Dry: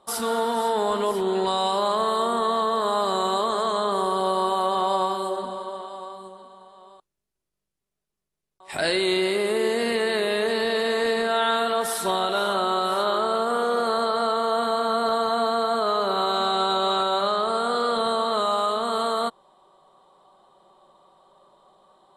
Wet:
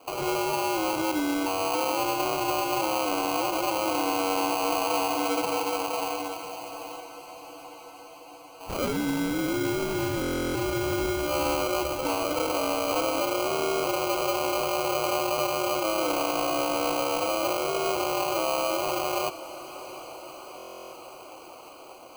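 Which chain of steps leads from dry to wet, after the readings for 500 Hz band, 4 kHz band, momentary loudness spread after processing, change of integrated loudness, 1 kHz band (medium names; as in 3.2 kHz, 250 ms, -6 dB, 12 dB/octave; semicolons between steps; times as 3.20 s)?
-4.0 dB, -4.0 dB, 17 LU, -3.5 dB, -4.5 dB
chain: compression 2:1, threshold -33 dBFS, peak gain reduction 8 dB; peak limiter -25 dBFS, peak gain reduction 5.5 dB; mistuned SSB -90 Hz 310–2900 Hz; sample-rate reducer 1.8 kHz, jitter 0%; echo that smears into a reverb 746 ms, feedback 71%, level -15.5 dB; buffer glitch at 10.20/20.57 s, samples 1024, times 14; trim +7.5 dB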